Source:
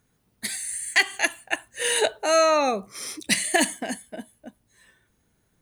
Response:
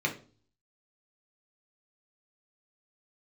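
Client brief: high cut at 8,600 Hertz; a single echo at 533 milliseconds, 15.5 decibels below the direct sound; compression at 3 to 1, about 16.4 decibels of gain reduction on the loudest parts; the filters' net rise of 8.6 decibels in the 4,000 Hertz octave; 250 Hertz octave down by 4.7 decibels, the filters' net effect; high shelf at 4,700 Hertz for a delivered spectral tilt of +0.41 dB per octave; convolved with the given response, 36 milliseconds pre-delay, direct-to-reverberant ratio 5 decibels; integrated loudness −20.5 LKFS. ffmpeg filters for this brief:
-filter_complex "[0:a]lowpass=8600,equalizer=frequency=250:width_type=o:gain=-6,equalizer=frequency=4000:width_type=o:gain=7.5,highshelf=frequency=4700:gain=7,acompressor=threshold=-34dB:ratio=3,aecho=1:1:533:0.168,asplit=2[link_01][link_02];[1:a]atrim=start_sample=2205,adelay=36[link_03];[link_02][link_03]afir=irnorm=-1:irlink=0,volume=-13.5dB[link_04];[link_01][link_04]amix=inputs=2:normalize=0,volume=11.5dB"

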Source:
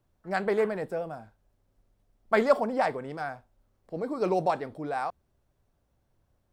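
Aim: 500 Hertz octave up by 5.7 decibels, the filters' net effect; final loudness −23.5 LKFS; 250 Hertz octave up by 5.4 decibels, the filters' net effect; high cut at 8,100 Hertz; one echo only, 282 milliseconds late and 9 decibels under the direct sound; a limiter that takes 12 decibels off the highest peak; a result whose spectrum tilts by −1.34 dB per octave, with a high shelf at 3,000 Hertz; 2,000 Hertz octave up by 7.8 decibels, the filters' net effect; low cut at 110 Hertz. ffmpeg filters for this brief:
ffmpeg -i in.wav -af "highpass=110,lowpass=8100,equalizer=frequency=250:width_type=o:gain=5.5,equalizer=frequency=500:width_type=o:gain=5,equalizer=frequency=2000:width_type=o:gain=7.5,highshelf=frequency=3000:gain=6,alimiter=limit=-15.5dB:level=0:latency=1,aecho=1:1:282:0.355,volume=4dB" out.wav

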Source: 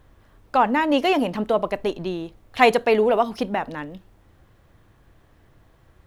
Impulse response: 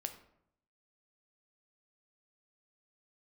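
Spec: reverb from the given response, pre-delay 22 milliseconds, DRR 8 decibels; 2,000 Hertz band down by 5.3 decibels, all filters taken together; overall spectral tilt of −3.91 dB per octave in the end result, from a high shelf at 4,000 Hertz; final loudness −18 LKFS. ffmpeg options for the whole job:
-filter_complex "[0:a]equalizer=frequency=2000:width_type=o:gain=-5,highshelf=frequency=4000:gain=-6,asplit=2[link_01][link_02];[1:a]atrim=start_sample=2205,adelay=22[link_03];[link_02][link_03]afir=irnorm=-1:irlink=0,volume=-6.5dB[link_04];[link_01][link_04]amix=inputs=2:normalize=0,volume=4dB"

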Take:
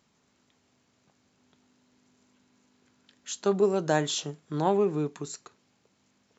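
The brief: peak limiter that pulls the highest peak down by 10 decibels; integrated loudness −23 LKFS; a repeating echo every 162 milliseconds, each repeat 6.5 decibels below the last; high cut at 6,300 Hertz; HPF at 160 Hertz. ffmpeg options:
ffmpeg -i in.wav -af "highpass=160,lowpass=6300,alimiter=limit=-21.5dB:level=0:latency=1,aecho=1:1:162|324|486|648|810|972:0.473|0.222|0.105|0.0491|0.0231|0.0109,volume=8.5dB" out.wav

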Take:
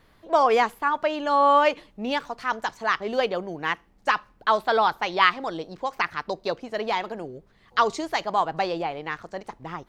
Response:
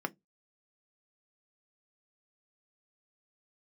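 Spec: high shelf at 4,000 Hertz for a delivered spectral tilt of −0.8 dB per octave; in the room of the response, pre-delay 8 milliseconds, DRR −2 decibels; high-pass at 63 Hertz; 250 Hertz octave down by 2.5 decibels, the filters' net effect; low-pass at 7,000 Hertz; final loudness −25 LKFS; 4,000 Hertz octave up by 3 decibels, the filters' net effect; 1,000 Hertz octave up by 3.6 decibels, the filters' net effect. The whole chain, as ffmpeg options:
-filter_complex "[0:a]highpass=63,lowpass=7000,equalizer=frequency=250:width_type=o:gain=-3.5,equalizer=frequency=1000:width_type=o:gain=4.5,highshelf=frequency=4000:gain=-3.5,equalizer=frequency=4000:width_type=o:gain=6,asplit=2[link_01][link_02];[1:a]atrim=start_sample=2205,adelay=8[link_03];[link_02][link_03]afir=irnorm=-1:irlink=0,volume=-2dB[link_04];[link_01][link_04]amix=inputs=2:normalize=0,volume=-8.5dB"

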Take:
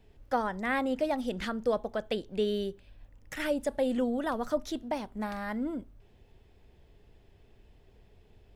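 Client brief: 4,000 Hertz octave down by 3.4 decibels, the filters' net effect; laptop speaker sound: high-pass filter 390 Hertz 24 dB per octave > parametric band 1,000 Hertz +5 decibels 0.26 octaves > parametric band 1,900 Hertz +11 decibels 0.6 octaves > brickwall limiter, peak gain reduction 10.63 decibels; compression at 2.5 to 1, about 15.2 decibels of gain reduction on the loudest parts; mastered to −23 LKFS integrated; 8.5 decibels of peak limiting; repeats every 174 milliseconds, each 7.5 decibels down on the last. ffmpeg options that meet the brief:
ffmpeg -i in.wav -af "equalizer=frequency=4000:width_type=o:gain=-7,acompressor=threshold=-48dB:ratio=2.5,alimiter=level_in=14dB:limit=-24dB:level=0:latency=1,volume=-14dB,highpass=frequency=390:width=0.5412,highpass=frequency=390:width=1.3066,equalizer=frequency=1000:width_type=o:width=0.26:gain=5,equalizer=frequency=1900:width_type=o:width=0.6:gain=11,aecho=1:1:174|348|522|696|870:0.422|0.177|0.0744|0.0312|0.0131,volume=27.5dB,alimiter=limit=-13.5dB:level=0:latency=1" out.wav

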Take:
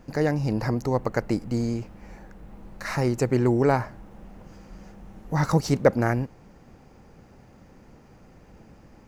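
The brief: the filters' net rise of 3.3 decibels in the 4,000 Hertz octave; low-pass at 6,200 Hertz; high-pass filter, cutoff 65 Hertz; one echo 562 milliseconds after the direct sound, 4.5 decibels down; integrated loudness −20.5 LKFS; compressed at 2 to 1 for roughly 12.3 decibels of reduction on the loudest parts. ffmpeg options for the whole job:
ffmpeg -i in.wav -af "highpass=65,lowpass=6200,equalizer=frequency=4000:width_type=o:gain=5.5,acompressor=threshold=-36dB:ratio=2,aecho=1:1:562:0.596,volume=13.5dB" out.wav

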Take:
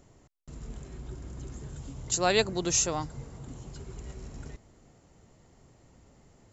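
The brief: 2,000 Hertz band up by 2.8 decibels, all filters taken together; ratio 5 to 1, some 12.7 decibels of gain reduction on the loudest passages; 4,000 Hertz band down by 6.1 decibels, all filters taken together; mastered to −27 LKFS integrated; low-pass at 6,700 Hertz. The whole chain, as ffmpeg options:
ffmpeg -i in.wav -af "lowpass=6700,equalizer=frequency=2000:width_type=o:gain=6,equalizer=frequency=4000:width_type=o:gain=-8.5,acompressor=threshold=-34dB:ratio=5,volume=14dB" out.wav

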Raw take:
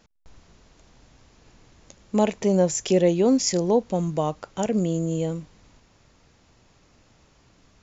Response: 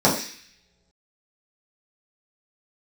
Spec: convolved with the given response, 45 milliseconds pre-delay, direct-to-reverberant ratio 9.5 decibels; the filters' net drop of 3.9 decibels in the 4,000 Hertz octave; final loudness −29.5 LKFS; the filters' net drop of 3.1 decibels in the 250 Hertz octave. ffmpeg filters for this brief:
-filter_complex "[0:a]equalizer=frequency=250:width_type=o:gain=-4.5,equalizer=frequency=4000:width_type=o:gain=-6,asplit=2[link_01][link_02];[1:a]atrim=start_sample=2205,adelay=45[link_03];[link_02][link_03]afir=irnorm=-1:irlink=0,volume=-29.5dB[link_04];[link_01][link_04]amix=inputs=2:normalize=0,volume=-6dB"

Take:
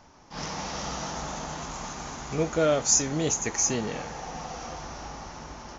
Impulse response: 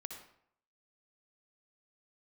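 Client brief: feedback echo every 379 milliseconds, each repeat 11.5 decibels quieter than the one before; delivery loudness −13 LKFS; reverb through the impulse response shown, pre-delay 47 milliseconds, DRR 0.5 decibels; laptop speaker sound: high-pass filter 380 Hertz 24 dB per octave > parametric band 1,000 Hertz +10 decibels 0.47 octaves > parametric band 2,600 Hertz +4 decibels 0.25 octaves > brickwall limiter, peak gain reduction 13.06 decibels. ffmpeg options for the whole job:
-filter_complex "[0:a]aecho=1:1:379|758|1137:0.266|0.0718|0.0194,asplit=2[link_01][link_02];[1:a]atrim=start_sample=2205,adelay=47[link_03];[link_02][link_03]afir=irnorm=-1:irlink=0,volume=2.5dB[link_04];[link_01][link_04]amix=inputs=2:normalize=0,highpass=frequency=380:width=0.5412,highpass=frequency=380:width=1.3066,equalizer=frequency=1000:width_type=o:width=0.47:gain=10,equalizer=frequency=2600:width_type=o:width=0.25:gain=4,volume=16.5dB,alimiter=limit=-3.5dB:level=0:latency=1"

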